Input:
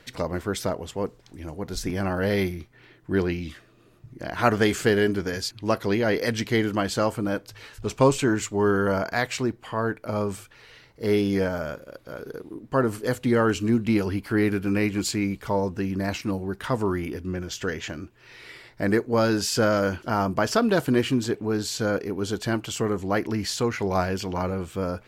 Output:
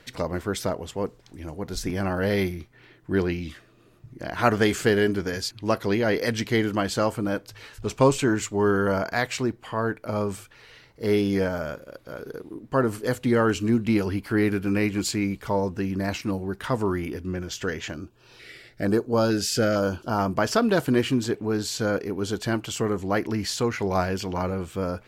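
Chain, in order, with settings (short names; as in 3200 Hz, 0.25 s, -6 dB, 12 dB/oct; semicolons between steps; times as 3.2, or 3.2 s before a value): 17.94–20.19 LFO notch square 1.1 Hz 990–2000 Hz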